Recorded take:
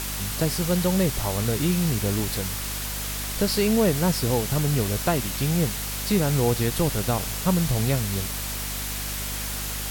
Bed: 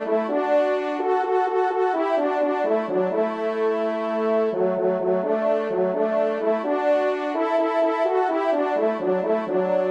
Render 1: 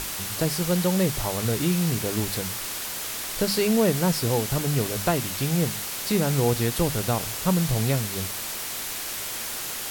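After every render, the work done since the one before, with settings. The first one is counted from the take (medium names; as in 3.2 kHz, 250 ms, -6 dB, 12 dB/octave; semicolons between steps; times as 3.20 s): hum notches 50/100/150/200/250 Hz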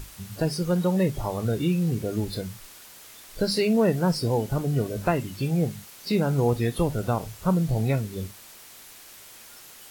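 noise print and reduce 15 dB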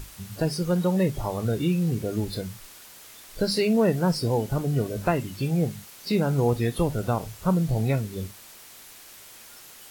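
no audible change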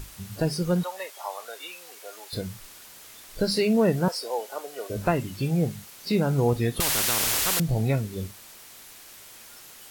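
0.83–2.33 s: high-pass 690 Hz 24 dB/octave; 4.08–4.90 s: high-pass 500 Hz 24 dB/octave; 6.80–7.60 s: spectrum-flattening compressor 10:1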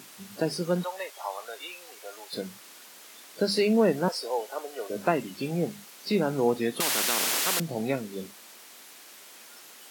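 high-pass 200 Hz 24 dB/octave; treble shelf 7.8 kHz -4.5 dB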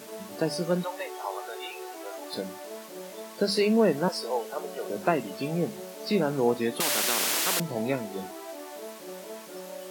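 add bed -19.5 dB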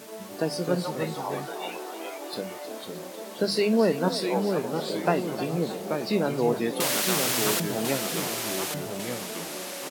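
ever faster or slower copies 213 ms, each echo -2 st, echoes 2, each echo -6 dB; on a send: frequency-shifting echo 311 ms, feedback 56%, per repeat +39 Hz, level -13 dB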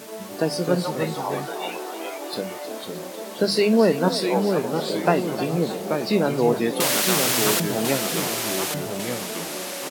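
trim +4.5 dB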